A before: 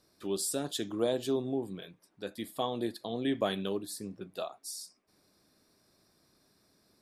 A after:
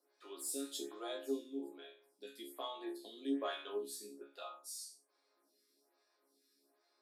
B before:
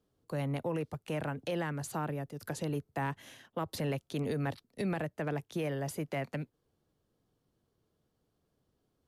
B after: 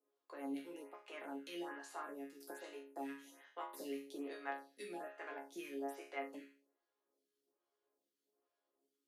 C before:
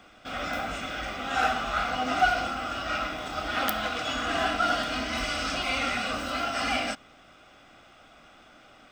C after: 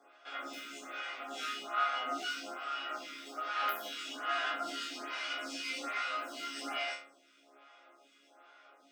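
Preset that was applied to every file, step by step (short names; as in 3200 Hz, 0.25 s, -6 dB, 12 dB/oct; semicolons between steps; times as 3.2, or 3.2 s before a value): dynamic EQ 610 Hz, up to -5 dB, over -44 dBFS, Q 1; added harmonics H 8 -29 dB, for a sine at -5.5 dBFS; elliptic high-pass 280 Hz, stop band 60 dB; resonator bank C#3 major, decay 0.45 s; photocell phaser 1.2 Hz; gain +13 dB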